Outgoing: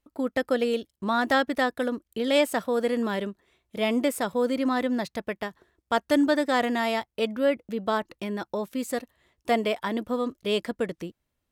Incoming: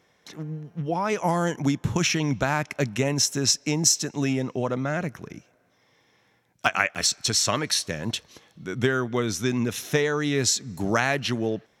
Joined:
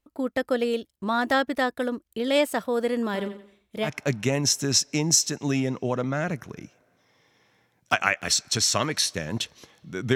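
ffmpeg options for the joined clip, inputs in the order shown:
ffmpeg -i cue0.wav -i cue1.wav -filter_complex "[0:a]asettb=1/sr,asplit=3[link_01][link_02][link_03];[link_01]atrim=end=3.054[link_04];[link_02]atrim=start=3.05:end=3.9,asetpts=PTS-STARTPTS,afade=type=in:duration=0.004:curve=qsin,afade=type=out:start_time=0.846:duration=0.004:curve=qsin,aecho=1:1:88|176|264|352:0.266|0.0931|0.0326|0.0114,atrim=end_sample=37485[link_05];[link_03]atrim=start=3.896[link_06];[link_04][link_05]acrossfade=duration=0.004:curve1=hsin:curve2=qsin[link_07];[link_07][link_06]acrossfade=duration=0.004:curve1=qsin:curve2=hsin,apad=whole_dur=10.15,atrim=end=10.15,atrim=end=3.9,asetpts=PTS-STARTPTS[link_08];[1:a]atrim=start=2.55:end=8.88,asetpts=PTS-STARTPTS[link_09];[link_08][link_09]acrossfade=duration=0.08:curve1=tri:curve2=tri" out.wav

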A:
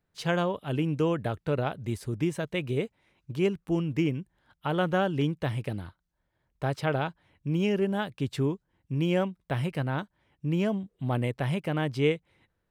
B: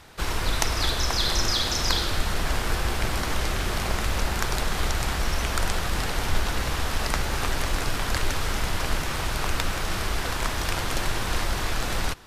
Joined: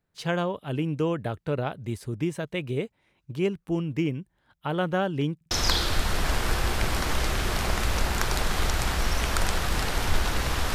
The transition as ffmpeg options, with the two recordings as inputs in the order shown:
ffmpeg -i cue0.wav -i cue1.wav -filter_complex "[0:a]apad=whole_dur=10.74,atrim=end=10.74,asplit=3[link_01][link_02][link_03];[link_01]atrim=end=5.412[link_04];[link_02]atrim=start=5.358:end=5.412[link_05];[link_03]atrim=start=5.358:end=5.412[link_06];[1:a]atrim=start=1.718:end=6.95[link_07];[link_04][link_05]acrossfade=duration=0.004:curve1=hsin:curve2=hsin[link_08];[link_08][link_06]acrossfade=duration=0.004:curve1=hsin:curve2=hsin[link_09];[link_09][link_07]acrossfade=duration=0.004:curve1=hsin:curve2=hsin" out.wav

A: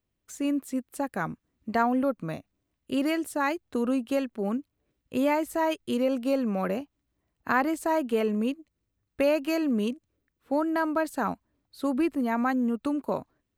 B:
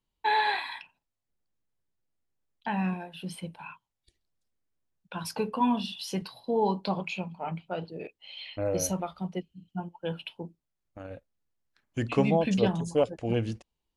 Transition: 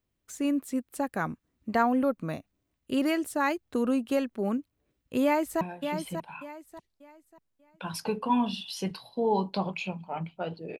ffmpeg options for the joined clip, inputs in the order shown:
ffmpeg -i cue0.wav -i cue1.wav -filter_complex "[0:a]apad=whole_dur=10.79,atrim=end=10.79,atrim=end=5.612[link_01];[1:a]atrim=start=2.918:end=8.1[link_02];[link_01][link_02]acrossfade=duration=0.004:curve1=hsin:curve2=hsin,asplit=2[link_03][link_04];[link_04]afade=type=in:start_time=5.23:duration=0.01,afade=type=out:start_time=5.61:duration=0.01,aecho=0:1:590|1180|1770|2360:0.421697|0.126509|0.0379527|0.0113858[link_05];[link_03][link_05]amix=inputs=2:normalize=0" out.wav

